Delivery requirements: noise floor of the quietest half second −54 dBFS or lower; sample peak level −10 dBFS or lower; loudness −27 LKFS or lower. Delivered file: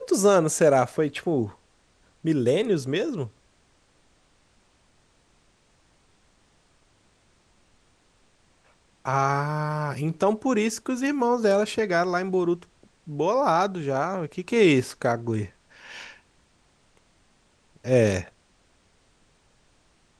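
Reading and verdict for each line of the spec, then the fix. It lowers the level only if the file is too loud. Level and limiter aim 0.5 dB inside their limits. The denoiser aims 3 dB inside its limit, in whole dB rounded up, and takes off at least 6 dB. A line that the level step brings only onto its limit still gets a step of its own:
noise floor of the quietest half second −63 dBFS: in spec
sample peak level −7.5 dBFS: out of spec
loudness −24.0 LKFS: out of spec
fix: level −3.5 dB

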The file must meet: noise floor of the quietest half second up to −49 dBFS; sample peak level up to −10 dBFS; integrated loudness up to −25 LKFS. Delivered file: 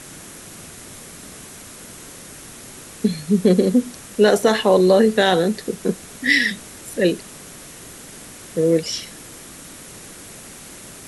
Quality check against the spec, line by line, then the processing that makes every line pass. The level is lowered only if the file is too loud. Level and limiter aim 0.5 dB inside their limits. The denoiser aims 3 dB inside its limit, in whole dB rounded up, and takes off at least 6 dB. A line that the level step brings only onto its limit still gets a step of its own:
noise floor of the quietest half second −39 dBFS: out of spec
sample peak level −4.0 dBFS: out of spec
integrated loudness −18.5 LKFS: out of spec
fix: broadband denoise 6 dB, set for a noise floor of −39 dBFS
level −7 dB

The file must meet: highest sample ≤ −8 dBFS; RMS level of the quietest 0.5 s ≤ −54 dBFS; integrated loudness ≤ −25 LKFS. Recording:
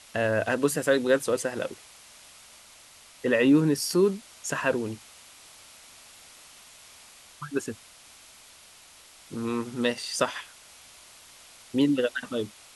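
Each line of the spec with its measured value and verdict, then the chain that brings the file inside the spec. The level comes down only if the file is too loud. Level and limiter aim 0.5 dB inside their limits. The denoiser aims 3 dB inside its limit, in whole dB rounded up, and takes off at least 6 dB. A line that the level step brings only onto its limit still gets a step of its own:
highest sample −9.0 dBFS: in spec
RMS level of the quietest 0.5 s −52 dBFS: out of spec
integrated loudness −26.5 LKFS: in spec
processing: broadband denoise 6 dB, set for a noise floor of −52 dBFS

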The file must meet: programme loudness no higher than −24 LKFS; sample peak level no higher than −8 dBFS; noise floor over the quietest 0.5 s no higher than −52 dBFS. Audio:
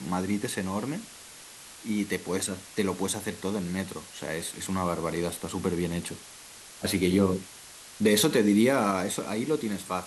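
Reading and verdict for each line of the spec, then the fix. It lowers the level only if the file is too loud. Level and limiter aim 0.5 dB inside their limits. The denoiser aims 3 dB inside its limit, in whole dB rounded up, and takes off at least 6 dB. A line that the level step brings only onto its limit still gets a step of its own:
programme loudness −28.5 LKFS: in spec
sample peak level −10.5 dBFS: in spec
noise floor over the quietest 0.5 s −47 dBFS: out of spec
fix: broadband denoise 8 dB, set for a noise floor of −47 dBFS

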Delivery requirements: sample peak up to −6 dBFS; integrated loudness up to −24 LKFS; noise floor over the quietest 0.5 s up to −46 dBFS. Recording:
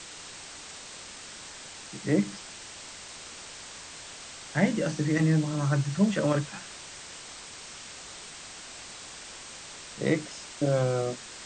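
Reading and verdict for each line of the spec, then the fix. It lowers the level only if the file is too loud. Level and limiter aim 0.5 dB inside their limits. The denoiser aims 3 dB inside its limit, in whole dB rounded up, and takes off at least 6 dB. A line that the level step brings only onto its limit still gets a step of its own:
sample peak −10.5 dBFS: in spec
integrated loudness −31.5 LKFS: in spec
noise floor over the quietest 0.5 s −44 dBFS: out of spec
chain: broadband denoise 6 dB, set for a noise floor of −44 dBFS

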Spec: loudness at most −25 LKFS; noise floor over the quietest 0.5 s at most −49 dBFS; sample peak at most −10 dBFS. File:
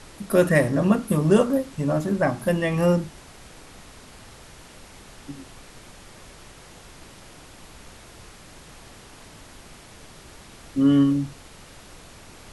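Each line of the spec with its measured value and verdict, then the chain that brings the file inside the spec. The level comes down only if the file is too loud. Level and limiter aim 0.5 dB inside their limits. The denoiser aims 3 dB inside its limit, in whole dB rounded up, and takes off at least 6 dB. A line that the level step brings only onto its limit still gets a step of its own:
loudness −21.5 LKFS: out of spec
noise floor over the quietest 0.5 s −46 dBFS: out of spec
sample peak −5.0 dBFS: out of spec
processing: level −4 dB
brickwall limiter −10.5 dBFS

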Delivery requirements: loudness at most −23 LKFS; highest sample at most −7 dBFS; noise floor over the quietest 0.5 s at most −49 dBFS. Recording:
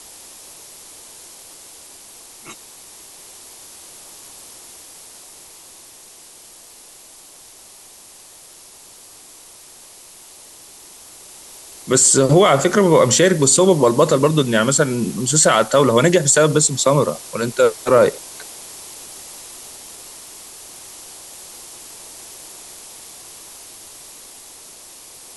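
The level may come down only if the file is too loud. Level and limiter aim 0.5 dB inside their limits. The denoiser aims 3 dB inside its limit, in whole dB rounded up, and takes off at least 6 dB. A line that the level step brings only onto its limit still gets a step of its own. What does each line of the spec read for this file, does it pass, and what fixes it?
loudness −14.5 LKFS: out of spec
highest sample −3.0 dBFS: out of spec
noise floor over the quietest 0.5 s −43 dBFS: out of spec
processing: level −9 dB

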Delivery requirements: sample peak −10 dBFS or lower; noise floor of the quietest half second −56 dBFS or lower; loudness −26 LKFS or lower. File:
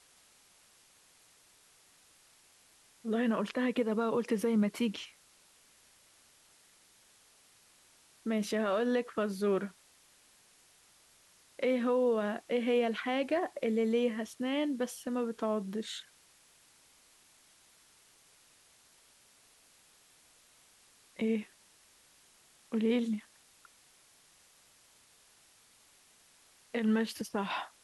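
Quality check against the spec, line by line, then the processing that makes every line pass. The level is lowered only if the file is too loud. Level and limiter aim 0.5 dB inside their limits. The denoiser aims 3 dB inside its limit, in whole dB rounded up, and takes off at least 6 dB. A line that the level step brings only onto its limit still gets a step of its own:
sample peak −19.5 dBFS: in spec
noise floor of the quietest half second −64 dBFS: in spec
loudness −33.0 LKFS: in spec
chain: no processing needed

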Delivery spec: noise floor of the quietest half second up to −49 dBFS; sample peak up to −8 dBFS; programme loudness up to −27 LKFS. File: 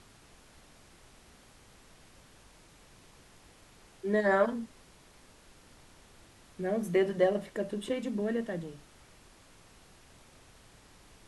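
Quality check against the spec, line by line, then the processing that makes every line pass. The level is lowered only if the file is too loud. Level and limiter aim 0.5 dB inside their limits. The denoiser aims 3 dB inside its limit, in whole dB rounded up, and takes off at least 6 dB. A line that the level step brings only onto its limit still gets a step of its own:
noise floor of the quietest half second −58 dBFS: in spec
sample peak −14.0 dBFS: in spec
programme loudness −31.0 LKFS: in spec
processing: no processing needed

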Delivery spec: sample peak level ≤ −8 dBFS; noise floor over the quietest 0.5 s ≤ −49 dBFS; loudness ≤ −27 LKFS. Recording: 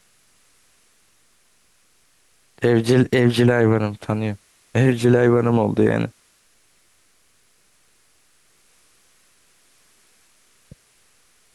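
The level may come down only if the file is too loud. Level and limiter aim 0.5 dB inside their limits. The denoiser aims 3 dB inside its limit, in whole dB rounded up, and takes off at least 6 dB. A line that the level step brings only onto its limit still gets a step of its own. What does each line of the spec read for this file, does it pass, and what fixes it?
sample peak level −6.0 dBFS: out of spec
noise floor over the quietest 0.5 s −59 dBFS: in spec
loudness −18.5 LKFS: out of spec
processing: level −9 dB

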